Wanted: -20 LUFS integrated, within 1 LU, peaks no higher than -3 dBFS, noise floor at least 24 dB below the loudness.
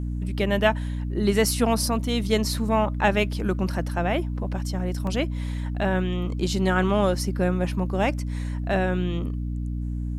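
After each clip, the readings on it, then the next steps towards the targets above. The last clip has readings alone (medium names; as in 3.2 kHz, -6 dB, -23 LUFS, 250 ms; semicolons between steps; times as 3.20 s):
dropouts 1; longest dropout 1.9 ms; hum 60 Hz; highest harmonic 300 Hz; hum level -26 dBFS; loudness -25.0 LUFS; peak level -6.0 dBFS; loudness target -20.0 LUFS
-> interpolate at 5.07 s, 1.9 ms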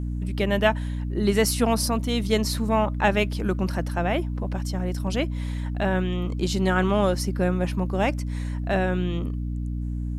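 dropouts 0; hum 60 Hz; highest harmonic 300 Hz; hum level -26 dBFS
-> hum notches 60/120/180/240/300 Hz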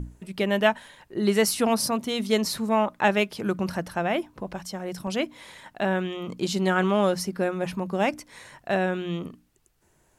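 hum not found; loudness -26.0 LUFS; peak level -6.5 dBFS; loudness target -20.0 LUFS
-> trim +6 dB; peak limiter -3 dBFS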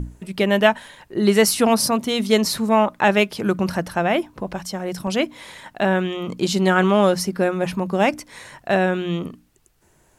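loudness -20.0 LUFS; peak level -3.0 dBFS; noise floor -59 dBFS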